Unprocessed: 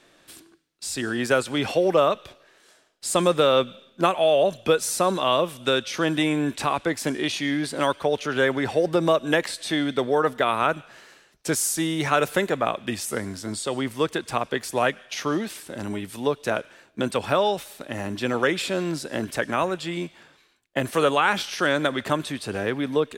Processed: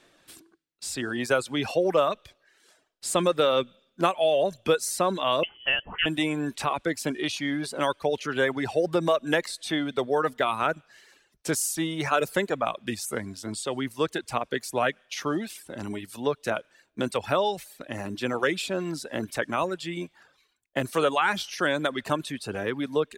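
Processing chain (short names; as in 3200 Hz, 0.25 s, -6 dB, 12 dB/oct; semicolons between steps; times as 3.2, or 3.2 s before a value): reverb removal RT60 0.67 s; 5.43–6.06 inverted band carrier 3200 Hz; gain -2.5 dB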